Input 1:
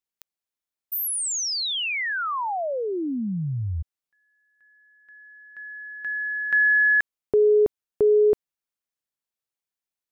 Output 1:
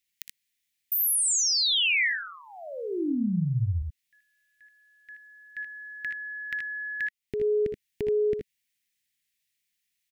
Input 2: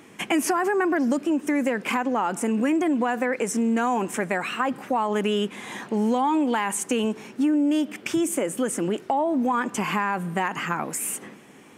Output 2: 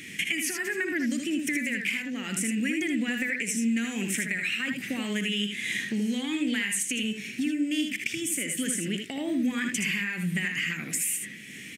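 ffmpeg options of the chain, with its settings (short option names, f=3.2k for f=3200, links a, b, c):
-filter_complex "[0:a]firequalizer=gain_entry='entry(200,0);entry(410,-11);entry(920,-29);entry(1900,9);entry(4700,5)':delay=0.05:min_phase=1,acompressor=threshold=-31dB:ratio=4:attack=4.9:release=487:knee=1:detection=rms,asplit=2[a][b];[b]aecho=0:1:62|78:0.266|0.531[c];[a][c]amix=inputs=2:normalize=0,volume=5dB"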